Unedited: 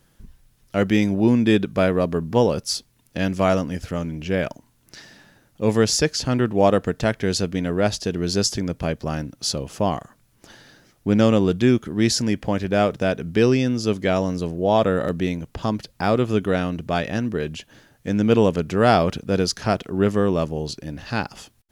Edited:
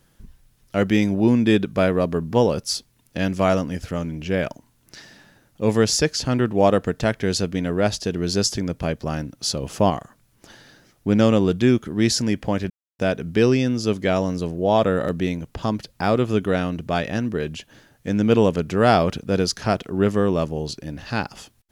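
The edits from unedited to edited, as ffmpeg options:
ffmpeg -i in.wav -filter_complex "[0:a]asplit=5[link_01][link_02][link_03][link_04][link_05];[link_01]atrim=end=9.632[link_06];[link_02]atrim=start=9.628:end=9.902,asetpts=PTS-STARTPTS,volume=3.5dB[link_07];[link_03]atrim=start=9.898:end=12.7,asetpts=PTS-STARTPTS,afade=type=out:start_time=2.798:duration=0.004:curve=hsin[link_08];[link_04]atrim=start=12.7:end=12.99,asetpts=PTS-STARTPTS,volume=0[link_09];[link_05]atrim=start=12.99,asetpts=PTS-STARTPTS,afade=type=in:duration=0.004:curve=hsin[link_10];[link_06][link_07]acrossfade=duration=0.004:curve1=hsin:curve2=hsin[link_11];[link_08][link_09][link_10]concat=n=3:v=0:a=1[link_12];[link_11][link_12]acrossfade=duration=0.004:curve1=hsin:curve2=hsin" out.wav

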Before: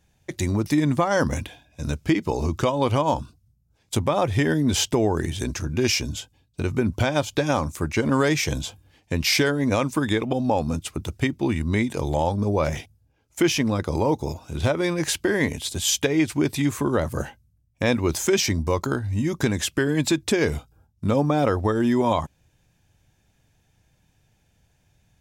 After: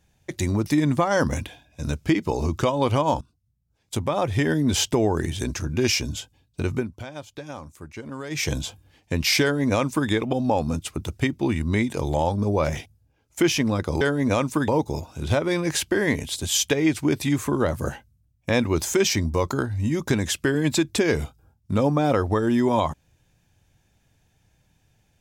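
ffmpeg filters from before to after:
ffmpeg -i in.wav -filter_complex "[0:a]asplit=6[link_01][link_02][link_03][link_04][link_05][link_06];[link_01]atrim=end=3.21,asetpts=PTS-STARTPTS,afade=type=out:start_time=3.206:duration=0.004:curve=hsin:silence=0.133352[link_07];[link_02]atrim=start=3.21:end=6.88,asetpts=PTS-STARTPTS,afade=type=in:duration=1.75:curve=qsin:silence=0.133352,afade=type=out:start_time=3.49:duration=0.18:curve=qsin:silence=0.188365[link_08];[link_03]atrim=start=6.88:end=8.3,asetpts=PTS-STARTPTS,volume=-14.5dB[link_09];[link_04]atrim=start=8.3:end=14.012,asetpts=PTS-STARTPTS,afade=type=in:duration=0.18:curve=qsin:silence=0.188365[link_10];[link_05]atrim=start=9.418:end=10.092[link_11];[link_06]atrim=start=14.008[link_12];[link_07][link_08][link_09][link_10]concat=n=4:v=0:a=1[link_13];[link_13][link_11]acrossfade=duration=0.004:curve1=hsin:curve2=hsin[link_14];[link_14][link_12]acrossfade=duration=0.004:curve1=hsin:curve2=hsin" out.wav

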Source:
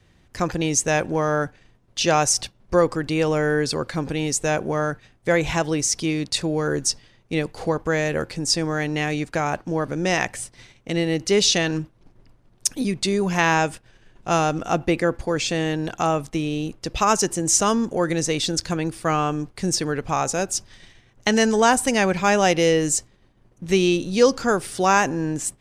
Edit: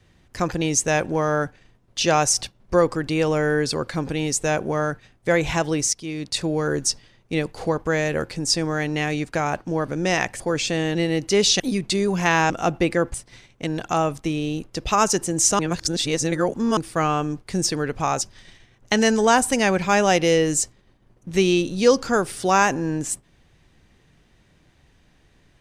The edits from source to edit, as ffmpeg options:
ffmpeg -i in.wav -filter_complex "[0:a]asplit=11[link_01][link_02][link_03][link_04][link_05][link_06][link_07][link_08][link_09][link_10][link_11];[link_01]atrim=end=5.93,asetpts=PTS-STARTPTS,afade=type=out:start_time=5.926:duration=0.004:curve=hsin:silence=0.188365[link_12];[link_02]atrim=start=5.93:end=10.402,asetpts=PTS-STARTPTS,afade=type=in:duration=0.53:silence=0.188365[link_13];[link_03]atrim=start=15.208:end=15.762[link_14];[link_04]atrim=start=10.928:end=11.582[link_15];[link_05]atrim=start=12.728:end=13.632[link_16];[link_06]atrim=start=14.568:end=15.212[link_17];[link_07]atrim=start=10.398:end=10.932[link_18];[link_08]atrim=start=15.758:end=17.682[link_19];[link_09]atrim=start=17.678:end=18.862,asetpts=PTS-STARTPTS,areverse[link_20];[link_10]atrim=start=18.858:end=20.302[link_21];[link_11]atrim=start=20.558[link_22];[link_12][link_13]concat=n=2:v=0:a=1[link_23];[link_23][link_14]acrossfade=duration=0.004:curve1=hsin:curve2=hsin[link_24];[link_24][link_15]acrossfade=duration=0.004:curve1=hsin:curve2=hsin[link_25];[link_25][link_16]acrossfade=duration=0.004:curve1=hsin:curve2=hsin[link_26];[link_26][link_17]acrossfade=duration=0.004:curve1=hsin:curve2=hsin[link_27];[link_27][link_18]acrossfade=duration=0.004:curve1=hsin:curve2=hsin[link_28];[link_28][link_19]acrossfade=duration=0.004:curve1=hsin:curve2=hsin[link_29];[link_29][link_20]acrossfade=duration=0.004:curve1=hsin:curve2=hsin[link_30];[link_30][link_21]acrossfade=duration=0.004:curve1=hsin:curve2=hsin[link_31];[link_31][link_22]acrossfade=duration=0.004:curve1=hsin:curve2=hsin" out.wav

